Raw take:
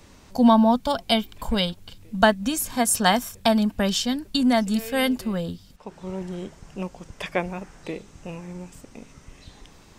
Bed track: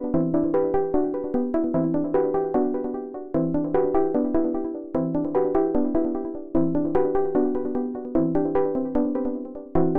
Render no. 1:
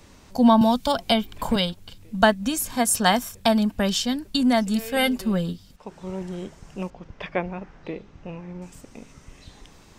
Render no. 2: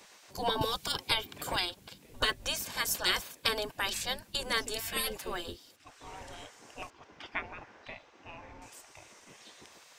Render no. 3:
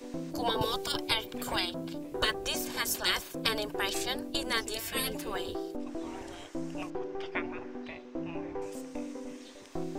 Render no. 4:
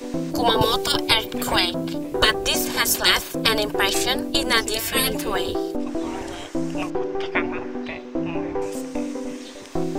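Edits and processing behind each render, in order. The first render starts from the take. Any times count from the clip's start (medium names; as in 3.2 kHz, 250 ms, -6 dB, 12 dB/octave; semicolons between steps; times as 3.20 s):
0.61–1.56 s: three bands compressed up and down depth 70%; 4.96–5.53 s: comb 5.2 ms; 6.90–8.62 s: distance through air 220 m
spectral gate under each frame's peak -15 dB weak; band-stop 1.3 kHz, Q 18
add bed track -16 dB
trim +11.5 dB; peak limiter -2 dBFS, peak gain reduction 2 dB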